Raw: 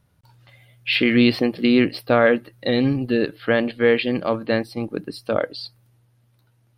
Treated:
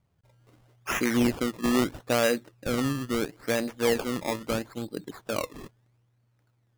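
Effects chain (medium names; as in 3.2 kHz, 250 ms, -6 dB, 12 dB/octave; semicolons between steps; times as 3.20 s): decimation with a swept rate 20×, swing 100% 0.76 Hz; trim -8 dB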